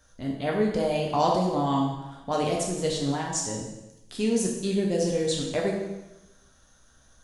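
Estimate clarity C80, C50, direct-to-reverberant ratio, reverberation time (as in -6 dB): 5.5 dB, 3.5 dB, -2.0 dB, 1.0 s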